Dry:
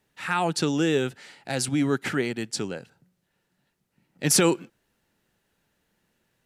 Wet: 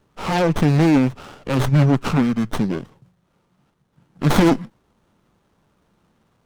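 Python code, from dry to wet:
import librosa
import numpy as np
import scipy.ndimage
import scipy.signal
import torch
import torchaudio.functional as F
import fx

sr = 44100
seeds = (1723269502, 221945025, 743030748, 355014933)

y = fx.cheby_harmonics(x, sr, harmonics=(2, 4, 5), levels_db=(-11, -9, -12), full_scale_db=-8.5)
y = fx.formant_shift(y, sr, semitones=-6)
y = fx.running_max(y, sr, window=17)
y = y * librosa.db_to_amplitude(4.0)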